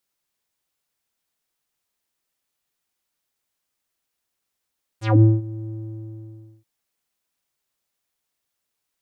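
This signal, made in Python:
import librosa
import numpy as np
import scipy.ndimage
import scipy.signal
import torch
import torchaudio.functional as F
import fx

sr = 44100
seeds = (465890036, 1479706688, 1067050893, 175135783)

y = fx.sub_voice(sr, note=45, wave='square', cutoff_hz=270.0, q=3.6, env_oct=5.5, env_s=0.15, attack_ms=203.0, decay_s=0.2, sustain_db=-20, release_s=0.94, note_s=0.69, slope=12)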